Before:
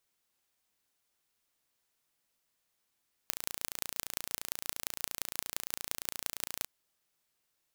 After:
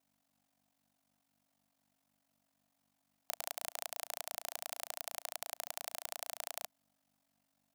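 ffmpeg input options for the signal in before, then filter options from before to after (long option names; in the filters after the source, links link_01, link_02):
-f lavfi -i "aevalsrc='0.596*eq(mod(n,1537),0)*(0.5+0.5*eq(mod(n,7685),0))':duration=3.35:sample_rate=44100"
-af "aeval=exprs='val(0)+0.002*(sin(2*PI*50*n/s)+sin(2*PI*2*50*n/s)/2+sin(2*PI*3*50*n/s)/3+sin(2*PI*4*50*n/s)/4+sin(2*PI*5*50*n/s)/5)':channel_layout=same,aeval=exprs='val(0)*sin(2*PI*23*n/s)':channel_layout=same,highpass=frequency=680:width_type=q:width=4.9"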